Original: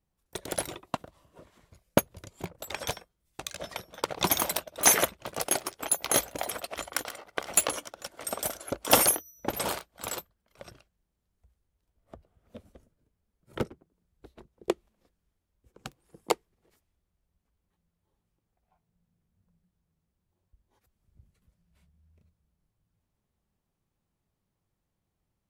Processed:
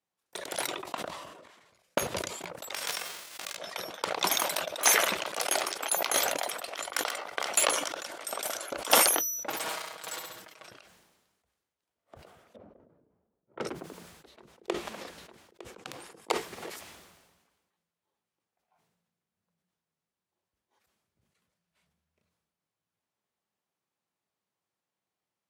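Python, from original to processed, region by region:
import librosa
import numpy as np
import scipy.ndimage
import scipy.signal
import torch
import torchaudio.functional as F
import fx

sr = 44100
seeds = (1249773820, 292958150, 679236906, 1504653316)

y = fx.chain(x, sr, fx.high_shelf(hz=9700.0, db=-5.5),
    fx.level_steps(step_db=10), at=(0.67, 2.22))
y = fx.envelope_flatten(y, sr, power=0.3, at=(2.73, 3.55), fade=0.02)
y = fx.peak_eq(y, sr, hz=12000.0, db=-3.0, octaves=1.6, at=(2.73, 3.55), fade=0.02)
y = fx.pre_swell(y, sr, db_per_s=66.0, at=(2.73, 3.55), fade=0.02)
y = fx.chain(y, sr, fx.highpass(hz=190.0, slope=6),
    fx.band_squash(depth_pct=40), at=(4.77, 6.0))
y = fx.chain(y, sr, fx.lower_of_two(delay_ms=6.3),
    fx.room_flutter(wall_m=11.5, rt60_s=0.26), at=(9.48, 10.68))
y = fx.chain(y, sr, fx.env_lowpass(base_hz=570.0, full_db=-27.5),
    fx.lowpass(hz=8800.0, slope=12), at=(12.56, 13.67))
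y = fx.chain(y, sr, fx.high_shelf(hz=8600.0, db=-6.5),
    fx.echo_single(ms=907, db=-15.5), at=(14.27, 16.31))
y = fx.weighting(y, sr, curve='A')
y = fx.sustainer(y, sr, db_per_s=42.0)
y = F.gain(torch.from_numpy(y), -1.5).numpy()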